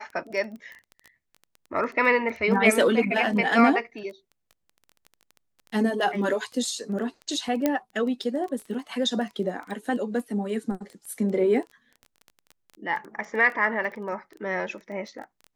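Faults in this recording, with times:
crackle 14/s -33 dBFS
7.66 pop -9 dBFS

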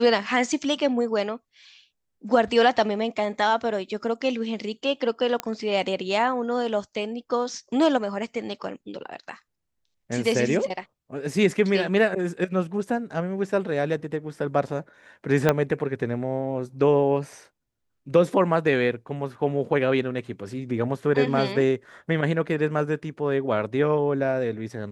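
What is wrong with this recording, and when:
5.4 pop -11 dBFS
15.49 pop -6 dBFS

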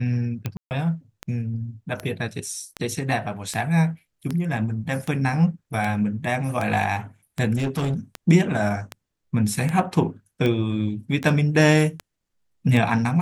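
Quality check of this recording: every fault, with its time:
tick 78 rpm -13 dBFS
0.57–0.71 gap 0.139 s
7.56–7.94 clipped -20 dBFS

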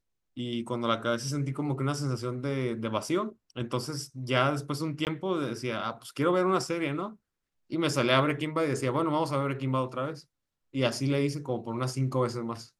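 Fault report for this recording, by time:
5.05–5.07 gap 18 ms

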